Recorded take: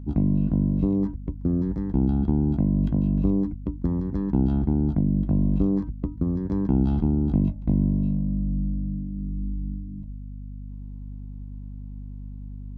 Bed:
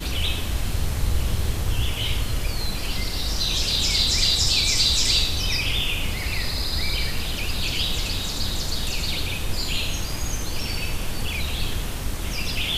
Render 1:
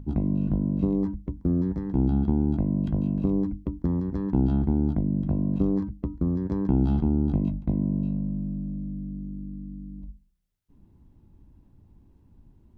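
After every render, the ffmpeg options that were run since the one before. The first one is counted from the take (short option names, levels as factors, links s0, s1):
-af "bandreject=f=50:t=h:w=6,bandreject=f=100:t=h:w=6,bandreject=f=150:t=h:w=6,bandreject=f=200:t=h:w=6,bandreject=f=250:t=h:w=6,bandreject=f=300:t=h:w=6"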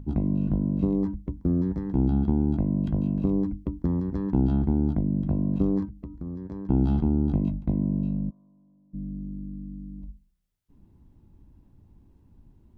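-filter_complex "[0:a]asettb=1/sr,asplit=3[s0][s1][s2];[s0]atrim=end=5.854[s3];[s1]atrim=start=5.85:end=6.7,asetpts=PTS-STARTPTS,afade=t=in:d=0.004:c=qsin,afade=t=out:st=0.846:d=0.004:c=qsin,acompressor=threshold=0.0112:ratio=2:attack=3.2:release=140:knee=1:detection=peak[s4];[s2]atrim=start=6.696[s5];[s3][s4]acrossfade=d=0.004:c1=hsin:c2=qsin[s6];[s6][s5]acrossfade=d=0.004:c1=qsin:c2=hsin,asplit=3[s7][s8][s9];[s7]afade=t=out:st=8.29:d=0.02[s10];[s8]bandpass=f=1100:t=q:w=4.5,afade=t=in:st=8.29:d=0.02,afade=t=out:st=8.93:d=0.02[s11];[s9]afade=t=in:st=8.93:d=0.02[s12];[s10][s11][s12]amix=inputs=3:normalize=0"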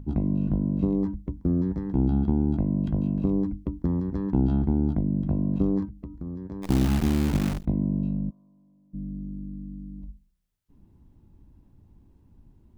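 -filter_complex "[0:a]asplit=3[s0][s1][s2];[s0]afade=t=out:st=6.62:d=0.02[s3];[s1]acrusher=bits=6:dc=4:mix=0:aa=0.000001,afade=t=in:st=6.62:d=0.02,afade=t=out:st=7.64:d=0.02[s4];[s2]afade=t=in:st=7.64:d=0.02[s5];[s3][s4][s5]amix=inputs=3:normalize=0"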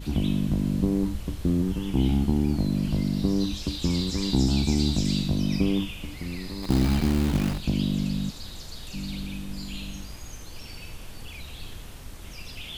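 -filter_complex "[1:a]volume=0.211[s0];[0:a][s0]amix=inputs=2:normalize=0"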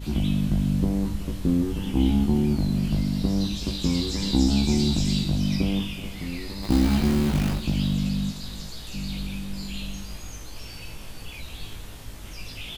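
-filter_complex "[0:a]asplit=2[s0][s1];[s1]adelay=19,volume=0.708[s2];[s0][s2]amix=inputs=2:normalize=0,aecho=1:1:377:0.178"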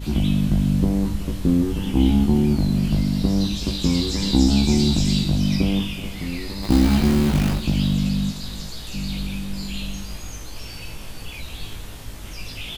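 -af "volume=1.58"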